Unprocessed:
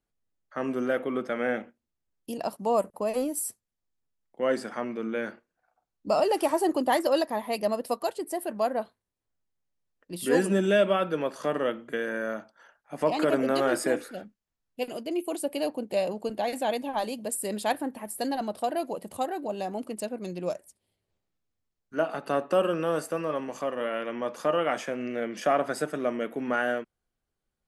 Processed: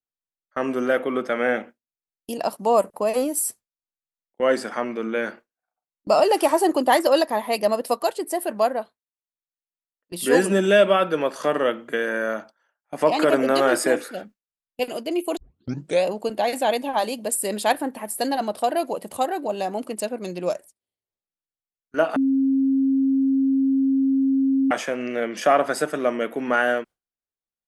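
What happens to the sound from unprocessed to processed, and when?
0:08.63–0:10.19: duck −9 dB, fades 0.27 s
0:15.37: tape start 0.67 s
0:22.16–0:24.71: beep over 269 Hz −20.5 dBFS
whole clip: low-shelf EQ 210 Hz −9 dB; noise gate with hold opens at −37 dBFS; level +7.5 dB

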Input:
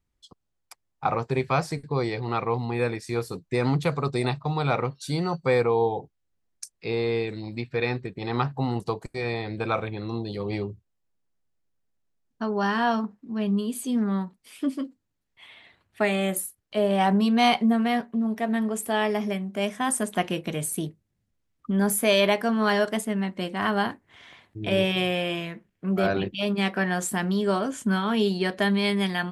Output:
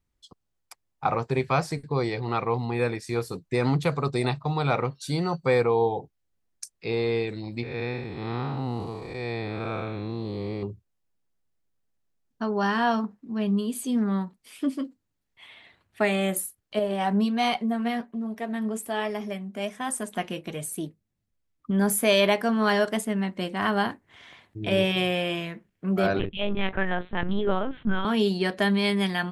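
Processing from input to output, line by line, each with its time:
0:07.63–0:10.63: spectrum smeared in time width 256 ms
0:16.79–0:21.70: flanger 1.3 Hz, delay 1.3 ms, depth 3.6 ms, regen +67%
0:26.19–0:28.05: linear-prediction vocoder at 8 kHz pitch kept

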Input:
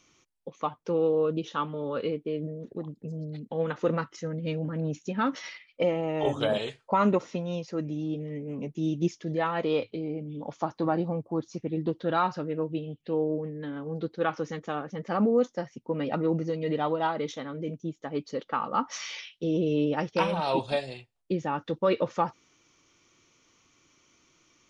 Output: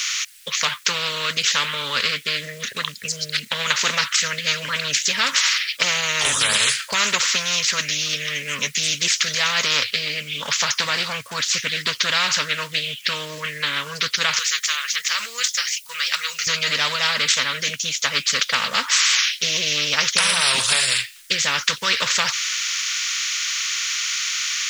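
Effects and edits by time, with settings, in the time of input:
0:14.39–0:16.47: first difference
whole clip: inverse Chebyshev high-pass filter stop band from 850 Hz, stop band 40 dB; boost into a limiter +27 dB; every bin compressed towards the loudest bin 4 to 1; level −1 dB

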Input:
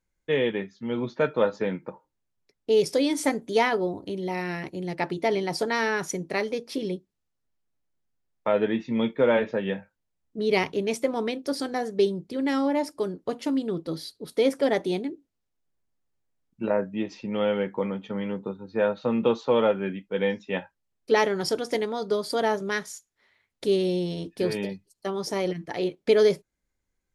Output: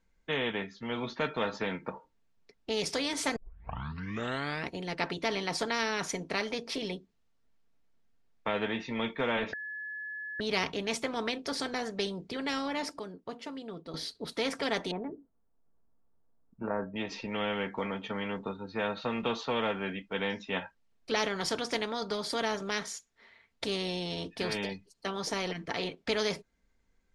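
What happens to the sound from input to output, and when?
0:03.36: tape start 1.35 s
0:09.53–0:10.40: beep over 1,710 Hz −23.5 dBFS
0:12.99–0:13.94: clip gain −11.5 dB
0:14.91–0:16.96: low-pass filter 1,300 Hz 24 dB per octave
whole clip: Bessel low-pass filter 4,700 Hz, order 2; comb filter 4.4 ms, depth 37%; every bin compressed towards the loudest bin 2 to 1; level −7 dB

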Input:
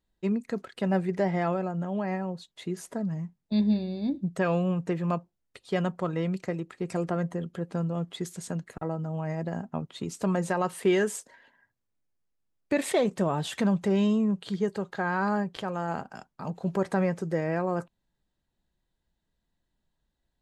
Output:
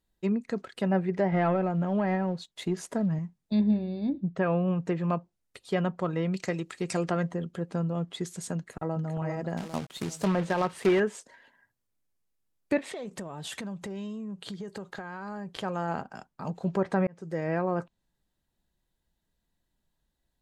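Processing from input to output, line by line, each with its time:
0:01.32–0:03.19: leveller curve on the samples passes 1
0:03.71–0:04.68: high-frequency loss of the air 190 metres
0:06.34–0:07.31: high-shelf EQ 2,100 Hz +11.5 dB
0:08.56–0:09.06: delay throw 400 ms, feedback 45%, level −5.5 dB
0:09.57–0:11.00: log-companded quantiser 4 bits
0:12.78–0:15.49: downward compressor 12 to 1, threshold −34 dBFS
0:16.02–0:16.46: high-shelf EQ 4,600 Hz −6 dB
0:17.07–0:17.53: fade in
whole clip: treble cut that deepens with the level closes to 2,500 Hz, closed at −22 dBFS; high-shelf EQ 9,700 Hz +9 dB

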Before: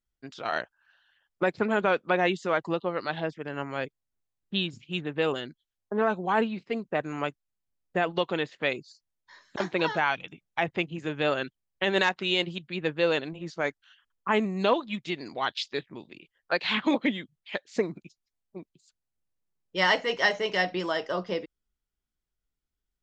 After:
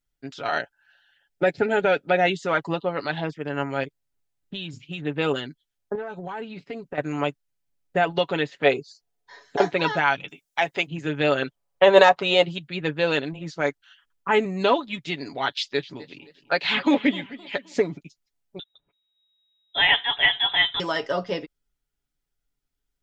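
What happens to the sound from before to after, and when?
0:00.58–0:02.40: Butterworth band-reject 1,100 Hz, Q 2.8
0:03.83–0:05.04: downward compressor, threshold −32 dBFS
0:05.95–0:06.98: downward compressor 8 to 1, threshold −33 dBFS
0:08.64–0:09.68: hollow resonant body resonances 450/710 Hz, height 12 dB → 15 dB, ringing for 35 ms
0:10.29–0:10.87: bass and treble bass −13 dB, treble +10 dB
0:11.42–0:12.43: flat-topped bell 750 Hz +11 dB
0:15.50–0:17.97: feedback echo with a swinging delay time 258 ms, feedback 40%, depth 150 cents, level −18 dB
0:18.59–0:20.80: voice inversion scrambler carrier 3,800 Hz
whole clip: notch filter 1,100 Hz, Q 13; comb filter 7.1 ms, depth 50%; level +3.5 dB

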